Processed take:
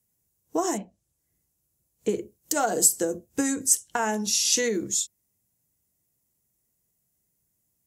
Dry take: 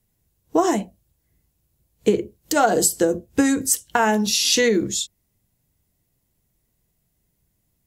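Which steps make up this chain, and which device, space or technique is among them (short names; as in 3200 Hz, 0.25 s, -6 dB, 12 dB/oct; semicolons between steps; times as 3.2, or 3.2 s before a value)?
budget condenser microphone (HPF 120 Hz 6 dB/oct; resonant high shelf 5100 Hz +6.5 dB, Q 1.5); 0.77–2.09 treble ducked by the level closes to 3000 Hz, closed at -26 dBFS; 3.5–4.57 LPF 11000 Hz 12 dB/oct; gain -7.5 dB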